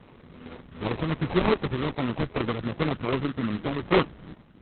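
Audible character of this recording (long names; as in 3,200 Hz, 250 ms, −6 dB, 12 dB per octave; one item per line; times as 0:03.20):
a quantiser's noise floor 12 bits, dither none
phaser sweep stages 2, 2.6 Hz, lowest notch 770–4,800 Hz
aliases and images of a low sample rate 1,600 Hz, jitter 20%
Opus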